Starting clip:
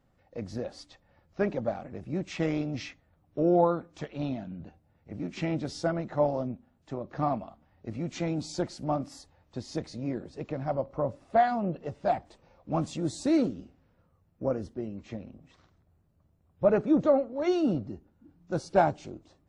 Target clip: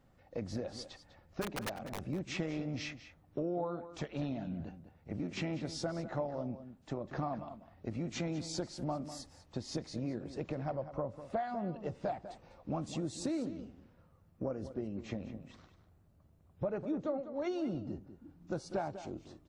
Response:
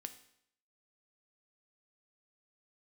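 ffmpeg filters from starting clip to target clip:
-filter_complex "[0:a]acompressor=threshold=0.0141:ratio=5,asplit=3[s0][s1][s2];[s0]afade=t=out:st=1.41:d=0.02[s3];[s1]aeval=exprs='(mod(47.3*val(0)+1,2)-1)/47.3':c=same,afade=t=in:st=1.41:d=0.02,afade=t=out:st=2.05:d=0.02[s4];[s2]afade=t=in:st=2.05:d=0.02[s5];[s3][s4][s5]amix=inputs=3:normalize=0,asplit=2[s6][s7];[s7]adelay=198.3,volume=0.251,highshelf=f=4000:g=-4.46[s8];[s6][s8]amix=inputs=2:normalize=0,volume=1.26"

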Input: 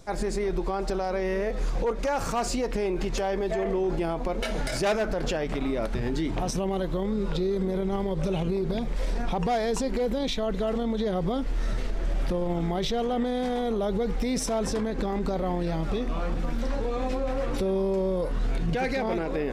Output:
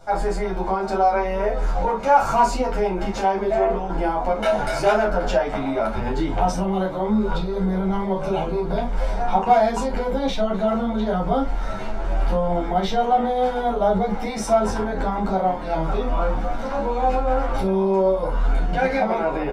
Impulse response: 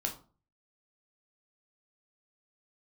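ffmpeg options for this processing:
-filter_complex "[0:a]equalizer=f=950:t=o:w=1.7:g=13.5[s0];[1:a]atrim=start_sample=2205,atrim=end_sample=3087[s1];[s0][s1]afir=irnorm=-1:irlink=0,asplit=2[s2][s3];[s3]adelay=9.9,afreqshift=0.82[s4];[s2][s4]amix=inputs=2:normalize=1"

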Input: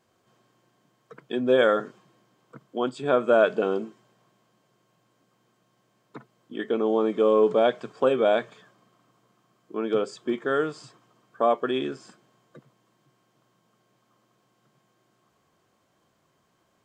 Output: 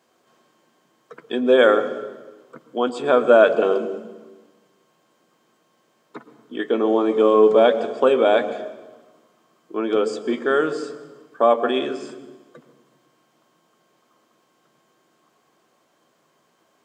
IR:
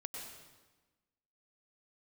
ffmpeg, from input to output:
-filter_complex "[0:a]highpass=260,asplit=2[s0][s1];[s1]lowshelf=f=400:g=11.5[s2];[1:a]atrim=start_sample=2205,adelay=12[s3];[s2][s3]afir=irnorm=-1:irlink=0,volume=0.316[s4];[s0][s4]amix=inputs=2:normalize=0,volume=1.88"

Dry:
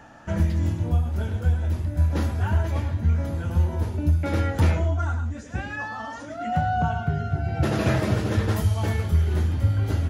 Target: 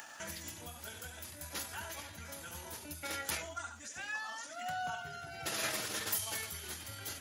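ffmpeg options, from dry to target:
-af "aderivative,atempo=1.4,acompressor=mode=upward:threshold=0.00355:ratio=2.5,volume=2"

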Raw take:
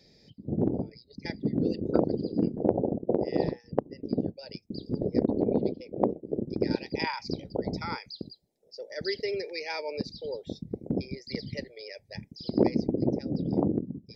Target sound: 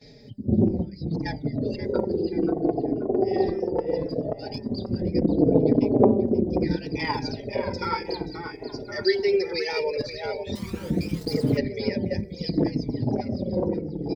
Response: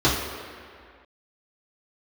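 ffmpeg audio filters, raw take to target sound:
-filter_complex "[0:a]bandreject=f=196.1:t=h:w=4,bandreject=f=392.2:t=h:w=4,bandreject=f=588.3:t=h:w=4,bandreject=f=784.4:t=h:w=4,bandreject=f=980.5:t=h:w=4,bandreject=f=1176.6:t=h:w=4,bandreject=f=1372.7:t=h:w=4,bandreject=f=1568.8:t=h:w=4,bandreject=f=1764.9:t=h:w=4,bandreject=f=1961:t=h:w=4,bandreject=f=2157.1:t=h:w=4,asplit=2[s0][s1];[s1]adelay=532,lowpass=f=2000:p=1,volume=0.596,asplit=2[s2][s3];[s3]adelay=532,lowpass=f=2000:p=1,volume=0.52,asplit=2[s4][s5];[s5]adelay=532,lowpass=f=2000:p=1,volume=0.52,asplit=2[s6][s7];[s7]adelay=532,lowpass=f=2000:p=1,volume=0.52,asplit=2[s8][s9];[s9]adelay=532,lowpass=f=2000:p=1,volume=0.52,asplit=2[s10][s11];[s11]adelay=532,lowpass=f=2000:p=1,volume=0.52,asplit=2[s12][s13];[s13]adelay=532,lowpass=f=2000:p=1,volume=0.52[s14];[s2][s4][s6][s8][s10][s12][s14]amix=inputs=7:normalize=0[s15];[s0][s15]amix=inputs=2:normalize=0,asettb=1/sr,asplit=3[s16][s17][s18];[s16]atrim=end=10.554[s19];[s17]atrim=start=10.55:end=11.57,asetpts=PTS-STARTPTS,afade=t=in:d=0.004:c=qsin,afade=t=out:st=1.016:d=0.004:c=qsin,aeval=exprs='val(0)*gte(abs(val(0)),0.00708)':c=same[s20];[s18]atrim=start=11.566[s21];[s19][s20]acrossfade=d=0.004:c1=hsin:c2=qsin[s22];[s22][s21]acrossfade=d=0.004:c1=qsin:c2=hsin,asplit=2[s23][s24];[s24]alimiter=limit=0.075:level=0:latency=1:release=353,volume=1.41[s25];[s23][s25]amix=inputs=2:normalize=0,aphaser=in_gain=1:out_gain=1:delay=2.8:decay=0.58:speed=0.17:type=sinusoidal,agate=range=0.2:threshold=0.00316:ratio=16:detection=peak,asplit=2[s26][s27];[s27]adelay=4.3,afreqshift=-0.7[s28];[s26][s28]amix=inputs=2:normalize=1"

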